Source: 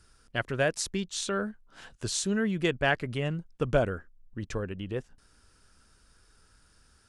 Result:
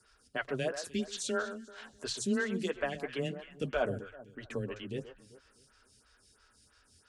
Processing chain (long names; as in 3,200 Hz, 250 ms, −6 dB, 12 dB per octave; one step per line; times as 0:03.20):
high-shelf EQ 2,500 Hz +10 dB
brickwall limiter −16.5 dBFS, peak gain reduction 10.5 dB
high-shelf EQ 9,500 Hz −10.5 dB
mains-hum notches 60/120 Hz
frequency shifter +13 Hz
high-pass filter 66 Hz 6 dB per octave
notch comb filter 170 Hz
delay that swaps between a low-pass and a high-pass 129 ms, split 1,500 Hz, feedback 54%, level −10 dB
phaser with staggered stages 3 Hz